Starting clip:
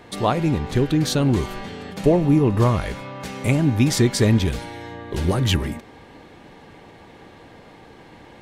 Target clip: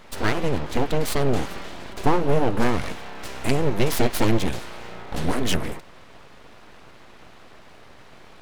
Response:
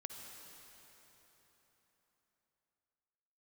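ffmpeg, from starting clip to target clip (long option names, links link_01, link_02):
-af "aeval=exprs='abs(val(0))':channel_layout=same"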